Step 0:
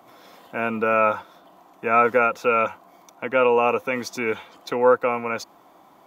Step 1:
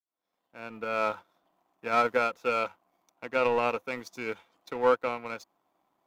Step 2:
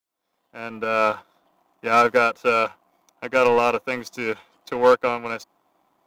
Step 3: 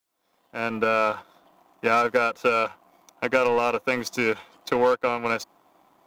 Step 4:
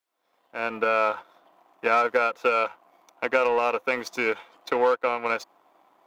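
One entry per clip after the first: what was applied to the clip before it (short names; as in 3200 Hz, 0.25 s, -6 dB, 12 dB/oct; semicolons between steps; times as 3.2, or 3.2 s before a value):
opening faded in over 1.17 s; power-law curve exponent 1.4; gain -5 dB
hard clip -16 dBFS, distortion -21 dB; gain +8.5 dB
compressor 6:1, threshold -24 dBFS, peak gain reduction 13 dB; gain +6 dB
tone controls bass -13 dB, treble -7 dB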